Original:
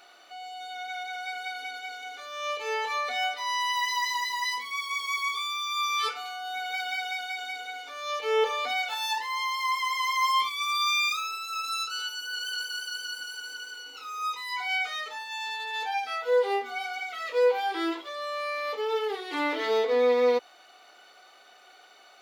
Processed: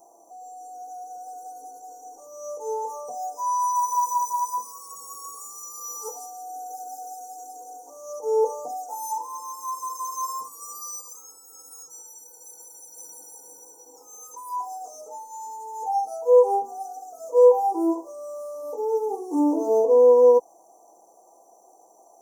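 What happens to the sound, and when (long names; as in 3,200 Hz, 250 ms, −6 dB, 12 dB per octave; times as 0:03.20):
0:03.10–0:08.17: delay with a high-pass on its return 168 ms, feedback 37%, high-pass 3,200 Hz, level −3.5 dB
0:11.01–0:12.97: flanger 1.4 Hz, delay 0.9 ms, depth 3.4 ms, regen −89%
0:18.62–0:19.91: hollow resonant body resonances 280/3,300 Hz, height 8 dB
whole clip: Chebyshev band-stop filter 980–6,000 Hz, order 5; mains-hum notches 50/100 Hz; comb filter 6.1 ms, depth 48%; level +5.5 dB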